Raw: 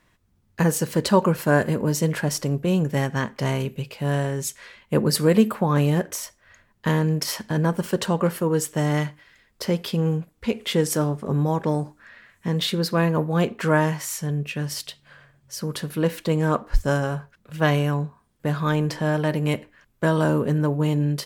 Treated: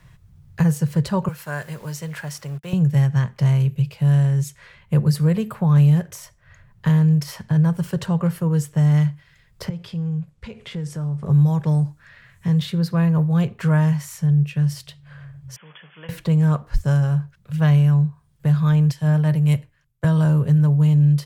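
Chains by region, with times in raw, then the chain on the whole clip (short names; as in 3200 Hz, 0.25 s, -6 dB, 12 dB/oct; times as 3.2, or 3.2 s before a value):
1.28–2.73 HPF 1500 Hz 6 dB/oct + requantised 8-bit, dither none
9.69–11.23 LPF 8500 Hz + compressor 2.5:1, threshold -30 dBFS + resonator 110 Hz, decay 0.5 s, mix 40%
15.56–16.09 delta modulation 64 kbps, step -32 dBFS + brick-wall FIR band-pass 150–3500 Hz + differentiator
18.91–20.04 bell 12000 Hz +6.5 dB 1.8 oct + three-band expander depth 100%
whole clip: resonant low shelf 190 Hz +9.5 dB, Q 3; three-band squash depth 40%; gain -6 dB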